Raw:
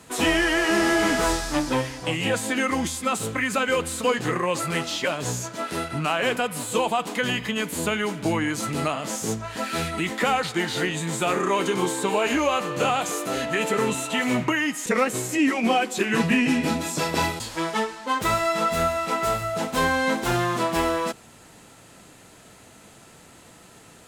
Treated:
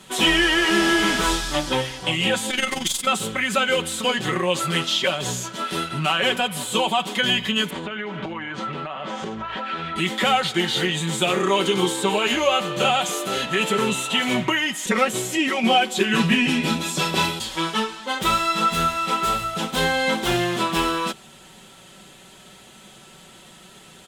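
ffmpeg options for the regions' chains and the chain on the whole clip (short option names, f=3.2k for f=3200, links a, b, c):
-filter_complex "[0:a]asettb=1/sr,asplit=3[a][b][c];[a]atrim=end=2.504[d];[b]atrim=start=2.5:end=3.07,asetpts=PTS-STARTPTS,afade=t=in:d=0.004:c=qsin,afade=t=out:st=0.566:d=0.004:c=qsin,highshelf=f=2k:g=9,aeval=exprs='(tanh(3.98*val(0)+0.45)-tanh(0.45))/3.98':c=same,tremolo=f=22:d=0.75[e];[c]atrim=start=3.066[f];[d][e]acrossfade=d=0.004:c1=hsin:c2=qsin[g];[g][f]acrossfade=d=0.004:c1=qsin:c2=hsin,asettb=1/sr,asplit=3[h][i][j];[h]atrim=end=7.704[k];[i]atrim=start=7.7:end=9.96,asetpts=PTS-STARTPTS,afade=t=in:d=0.004:c=qsin,afade=t=out:st=2.256:d=0.004:c=qsin,lowpass=2.9k,equalizer=f=1k:w=0.43:g=8.5,acompressor=threshold=-27dB:ratio=16:attack=3.2:release=140:knee=1:detection=peak[l];[j]atrim=start=9.956[m];[k][l]acrossfade=d=0.004:c1=hsin:c2=qsin[n];[n][m]acrossfade=d=0.004:c1=qsin:c2=hsin,equalizer=f=3.3k:t=o:w=0.45:g=10,aecho=1:1:5.3:0.64"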